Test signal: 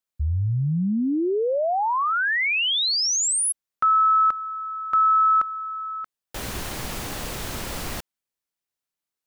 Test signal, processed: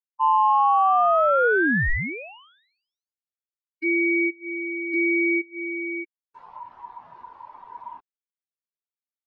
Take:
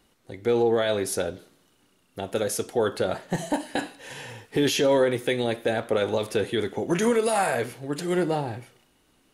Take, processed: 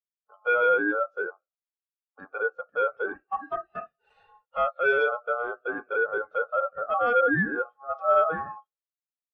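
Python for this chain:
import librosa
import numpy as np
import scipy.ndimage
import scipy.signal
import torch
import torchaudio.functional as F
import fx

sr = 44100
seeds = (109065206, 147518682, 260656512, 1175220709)

p1 = fx.env_lowpass_down(x, sr, base_hz=800.0, full_db=-20.0)
p2 = p1 * np.sin(2.0 * np.pi * 960.0 * np.arange(len(p1)) / sr)
p3 = fx.fold_sine(p2, sr, drive_db=13, ceiling_db=-11.5)
p4 = p2 + (p3 * 10.0 ** (-8.0 / 20.0))
p5 = fx.spectral_expand(p4, sr, expansion=2.5)
y = p5 * 10.0 ** (3.0 / 20.0)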